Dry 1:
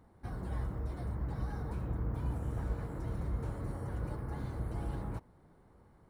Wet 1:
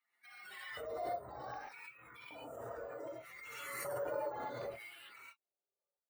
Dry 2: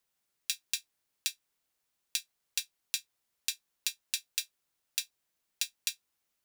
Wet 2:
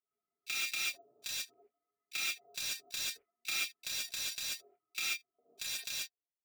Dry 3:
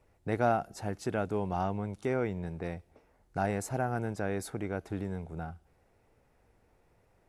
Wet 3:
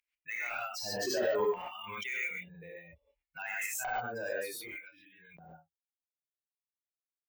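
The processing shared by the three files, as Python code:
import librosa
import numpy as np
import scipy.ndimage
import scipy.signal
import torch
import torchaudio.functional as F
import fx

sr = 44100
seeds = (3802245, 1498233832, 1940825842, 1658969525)

y = fx.bin_expand(x, sr, power=3.0)
y = fx.low_shelf(y, sr, hz=140.0, db=8.0)
y = fx.rider(y, sr, range_db=4, speed_s=2.0)
y = fx.filter_lfo_highpass(y, sr, shape='square', hz=0.65, low_hz=620.0, high_hz=2300.0, q=4.4)
y = np.clip(y, -10.0 ** (-17.5 / 20.0), 10.0 ** (-17.5 / 20.0))
y = fx.chorus_voices(y, sr, voices=2, hz=0.43, base_ms=29, depth_ms=2.4, mix_pct=20)
y = 10.0 ** (-33.5 / 20.0) * np.tanh(y / 10.0 ** (-33.5 / 20.0))
y = fx.rev_gated(y, sr, seeds[0], gate_ms=160, shape='rising', drr_db=-7.5)
y = np.repeat(scipy.signal.resample_poly(y, 1, 2), 2)[:len(y)]
y = fx.pre_swell(y, sr, db_per_s=24.0)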